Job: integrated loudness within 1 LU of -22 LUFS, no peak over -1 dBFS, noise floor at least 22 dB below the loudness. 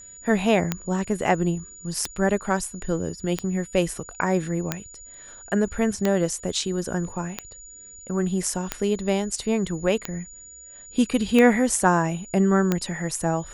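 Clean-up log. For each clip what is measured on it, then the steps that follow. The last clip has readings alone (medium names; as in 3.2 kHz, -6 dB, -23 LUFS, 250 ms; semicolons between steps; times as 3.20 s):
clicks found 10; steady tone 6.9 kHz; tone level -42 dBFS; loudness -24.5 LUFS; peak level -4.5 dBFS; loudness target -22.0 LUFS
-> de-click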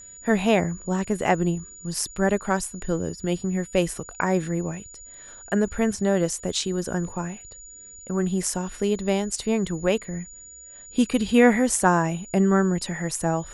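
clicks found 0; steady tone 6.9 kHz; tone level -42 dBFS
-> band-stop 6.9 kHz, Q 30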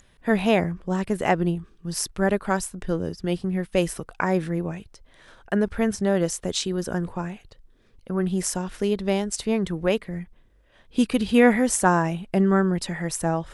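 steady tone not found; loudness -24.5 LUFS; peak level -4.5 dBFS; loudness target -22.0 LUFS
-> trim +2.5 dB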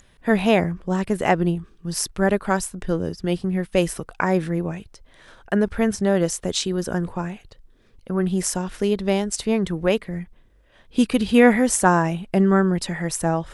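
loudness -22.0 LUFS; peak level -2.0 dBFS; noise floor -56 dBFS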